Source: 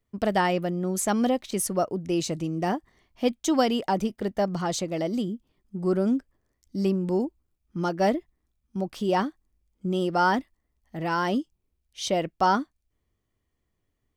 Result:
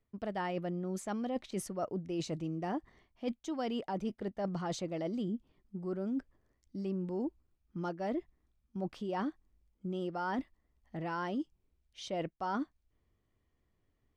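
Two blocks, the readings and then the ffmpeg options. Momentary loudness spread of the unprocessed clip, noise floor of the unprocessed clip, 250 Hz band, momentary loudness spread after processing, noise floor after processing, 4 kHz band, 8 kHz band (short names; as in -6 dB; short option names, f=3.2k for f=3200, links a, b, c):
10 LU, -78 dBFS, -10.0 dB, 7 LU, -79 dBFS, -13.5 dB, -16.5 dB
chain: -af "aemphasis=mode=reproduction:type=50fm,areverse,acompressor=threshold=-33dB:ratio=10,areverse"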